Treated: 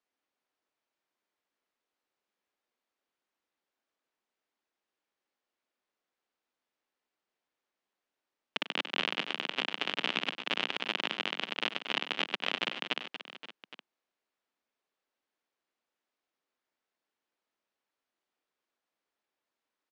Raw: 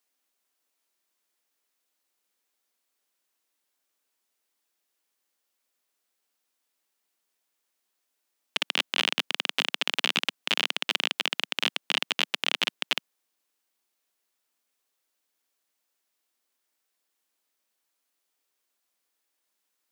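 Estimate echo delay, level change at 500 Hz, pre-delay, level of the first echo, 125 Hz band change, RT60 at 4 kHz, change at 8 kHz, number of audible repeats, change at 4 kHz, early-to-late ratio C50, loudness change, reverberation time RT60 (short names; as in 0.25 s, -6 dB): 96 ms, -0.5 dB, none, -13.5 dB, n/a, none, -15.0 dB, 4, -7.0 dB, none, -6.0 dB, none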